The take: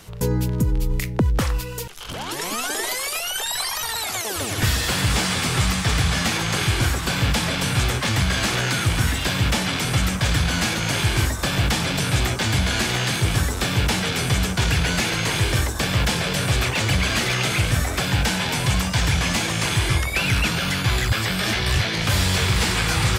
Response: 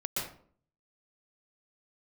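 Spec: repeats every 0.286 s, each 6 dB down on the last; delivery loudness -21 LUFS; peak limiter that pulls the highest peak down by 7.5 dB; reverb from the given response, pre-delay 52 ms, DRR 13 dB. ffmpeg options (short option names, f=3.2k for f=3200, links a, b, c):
-filter_complex "[0:a]alimiter=limit=-16dB:level=0:latency=1,aecho=1:1:286|572|858|1144|1430|1716:0.501|0.251|0.125|0.0626|0.0313|0.0157,asplit=2[a][b];[1:a]atrim=start_sample=2205,adelay=52[c];[b][c]afir=irnorm=-1:irlink=0,volume=-17.5dB[d];[a][d]amix=inputs=2:normalize=0,volume=2dB"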